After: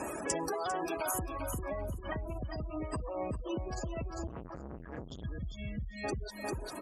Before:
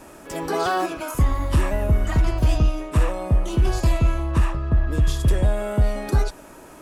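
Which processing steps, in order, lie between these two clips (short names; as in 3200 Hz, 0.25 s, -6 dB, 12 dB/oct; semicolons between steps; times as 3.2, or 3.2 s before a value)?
limiter -19.5 dBFS, peak gain reduction 8.5 dB; 5.07–6.04 spectral gain 250–1700 Hz -20 dB; reverb removal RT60 0.85 s; spectral gate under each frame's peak -20 dB strong; HPF 44 Hz 24 dB/oct; notch 1400 Hz, Q 9.5; feedback echo 0.398 s, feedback 24%, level -6 dB; compressor 5:1, threshold -42 dBFS, peak gain reduction 18 dB; tone controls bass -5 dB, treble +7 dB; 4.27–5.24 core saturation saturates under 640 Hz; gain +8.5 dB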